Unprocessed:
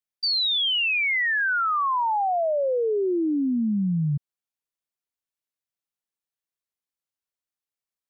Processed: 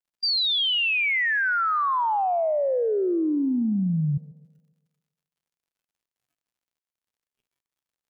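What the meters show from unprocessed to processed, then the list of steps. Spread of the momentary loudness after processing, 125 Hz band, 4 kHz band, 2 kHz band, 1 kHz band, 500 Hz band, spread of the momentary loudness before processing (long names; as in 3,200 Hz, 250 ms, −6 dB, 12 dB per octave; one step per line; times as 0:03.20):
4 LU, +0.5 dB, 0.0 dB, 0.0 dB, 0.0 dB, 0.0 dB, 4 LU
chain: pitch vibrato 1.2 Hz 41 cents
surface crackle 87 per second −56 dBFS
noise reduction from a noise print of the clip's start 11 dB
on a send: tape delay 138 ms, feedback 55%, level −17 dB, low-pass 3,500 Hz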